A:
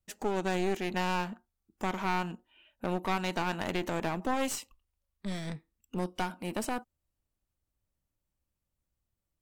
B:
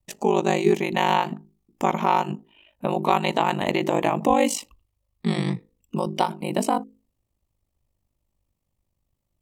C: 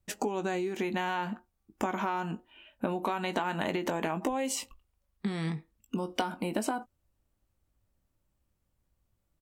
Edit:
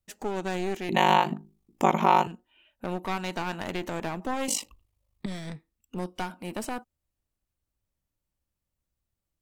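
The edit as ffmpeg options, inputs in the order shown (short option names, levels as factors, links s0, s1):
-filter_complex "[1:a]asplit=2[s0][s1];[0:a]asplit=3[s2][s3][s4];[s2]atrim=end=0.892[s5];[s0]atrim=start=0.888:end=2.272[s6];[s3]atrim=start=2.268:end=4.482[s7];[s1]atrim=start=4.478:end=5.262[s8];[s4]atrim=start=5.258[s9];[s5][s6]acrossfade=d=0.004:c1=hsin:c2=hsin[s10];[s10][s7]acrossfade=d=0.004:c1=hsin:c2=hsin[s11];[s11][s8]acrossfade=d=0.004:c1=hsin:c2=hsin[s12];[s12][s9]acrossfade=d=0.004:c1=hsin:c2=hsin"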